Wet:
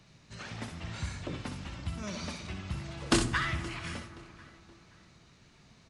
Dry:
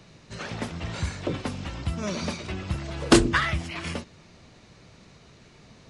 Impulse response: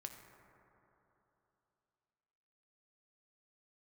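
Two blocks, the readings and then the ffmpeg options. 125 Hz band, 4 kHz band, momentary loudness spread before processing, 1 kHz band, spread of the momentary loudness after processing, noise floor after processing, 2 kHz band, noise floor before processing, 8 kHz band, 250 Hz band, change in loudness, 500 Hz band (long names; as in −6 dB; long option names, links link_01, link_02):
−6.5 dB, −6.0 dB, 15 LU, −7.5 dB, 21 LU, −60 dBFS, −6.5 dB, −53 dBFS, −5.5 dB, −9.5 dB, −7.5 dB, −11.5 dB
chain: -filter_complex "[0:a]equalizer=frequency=460:width=1.1:gain=-6,asplit=2[link_01][link_02];[link_02]adelay=523,lowpass=frequency=4500:poles=1,volume=-18.5dB,asplit=2[link_03][link_04];[link_04]adelay=523,lowpass=frequency=4500:poles=1,volume=0.41,asplit=2[link_05][link_06];[link_06]adelay=523,lowpass=frequency=4500:poles=1,volume=0.41[link_07];[link_01][link_03][link_05][link_07]amix=inputs=4:normalize=0,asplit=2[link_08][link_09];[1:a]atrim=start_sample=2205,highshelf=frequency=5100:gain=6,adelay=63[link_10];[link_09][link_10]afir=irnorm=-1:irlink=0,volume=-3.5dB[link_11];[link_08][link_11]amix=inputs=2:normalize=0,volume=-7dB"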